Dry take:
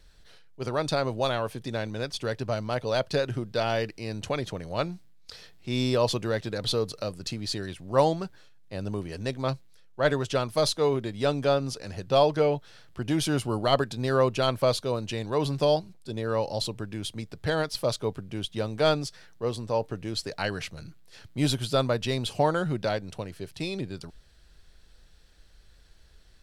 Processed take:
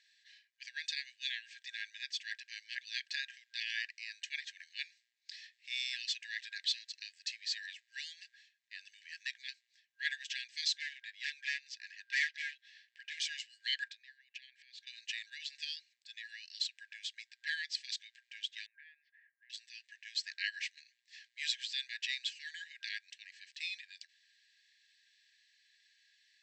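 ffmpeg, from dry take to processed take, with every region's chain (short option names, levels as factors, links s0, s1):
-filter_complex "[0:a]asettb=1/sr,asplit=3[s0][s1][s2];[s0]atrim=end=10.784[s3];[s1]atrim=start=10.78:end=13.2,asetpts=PTS-STARTPTS,afade=t=in:d=0.004:c=qsin,afade=t=out:st=2.416:d=0.004:c=qsin,highshelf=f=6500:g=-12,aeval=exprs='0.0944*(abs(mod(val(0)/0.0944+3,4)-2)-1)':c=same[s4];[s2]atrim=start=13.196[s5];[s3][s4]acrossfade=d=0.004:c1=hsin:c2=qsin[s6];[s6][s5]acrossfade=d=0.004:c1=qsin:c2=hsin,asettb=1/sr,asplit=3[s7][s8][s9];[s7]atrim=end=13.884[s10];[s8]atrim=start=13.88:end=14.87,asetpts=PTS-STARTPTS,afade=t=in:d=0.004:c=qsin,afade=t=out:st=0.986:d=0.004:c=qsin,equalizer=f=9100:w=0.43:g=-11.5,acompressor=threshold=0.0158:ratio=16:attack=3.2:release=140:knee=1:detection=peak[s11];[s9]atrim=start=14.866[s12];[s10][s11]acrossfade=d=0.004:c1=hsin:c2=qsin[s13];[s13][s12]acrossfade=d=0.004:c1=qsin:c2=hsin,asettb=1/sr,asplit=3[s14][s15][s16];[s14]atrim=end=18.664[s17];[s15]atrim=start=18.66:end=19.5,asetpts=PTS-STARTPTS,afade=t=in:d=0.004:c=qsin,afade=t=out:st=0.836:d=0.004:c=qsin,lowpass=f=1500:w=0.5412,lowpass=f=1500:w=1.3066,acompressor=threshold=0.0316:ratio=2:attack=3.2:release=140:knee=1:detection=peak[s18];[s16]atrim=start=19.496[s19];[s17][s18]acrossfade=d=0.004:c1=hsin:c2=qsin[s20];[s20][s19]acrossfade=d=0.004:c1=qsin:c2=hsin,bandreject=f=3200:w=22,afftfilt=real='re*between(b*sr/4096,1600,8200)':imag='im*between(b*sr/4096,1600,8200)':win_size=4096:overlap=0.75,highshelf=f=4700:g=-11.5,volume=1.19"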